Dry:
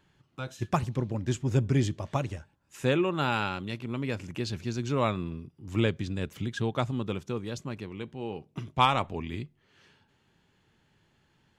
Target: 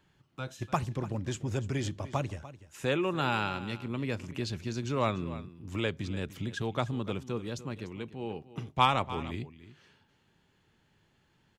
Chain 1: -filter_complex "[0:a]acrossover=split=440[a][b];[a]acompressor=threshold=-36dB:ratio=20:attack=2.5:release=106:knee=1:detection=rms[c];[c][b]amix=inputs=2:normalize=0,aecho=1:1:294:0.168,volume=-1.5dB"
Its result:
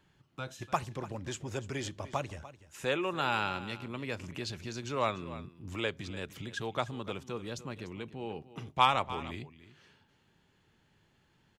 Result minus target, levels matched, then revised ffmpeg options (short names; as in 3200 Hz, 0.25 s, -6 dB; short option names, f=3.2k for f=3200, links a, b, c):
compressor: peak gain reduction +8.5 dB
-filter_complex "[0:a]acrossover=split=440[a][b];[a]acompressor=threshold=-27dB:ratio=20:attack=2.5:release=106:knee=1:detection=rms[c];[c][b]amix=inputs=2:normalize=0,aecho=1:1:294:0.168,volume=-1.5dB"